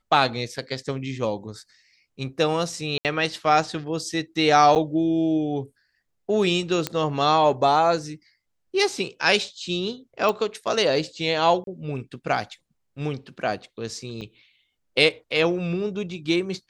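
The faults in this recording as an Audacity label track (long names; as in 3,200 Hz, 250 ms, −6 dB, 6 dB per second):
2.980000	3.050000	drop-out 68 ms
4.750000	4.760000	drop-out 8.7 ms
6.870000	6.870000	click −9 dBFS
10.290000	10.290000	click
11.640000	11.670000	drop-out 32 ms
14.210000	14.210000	drop-out 4.6 ms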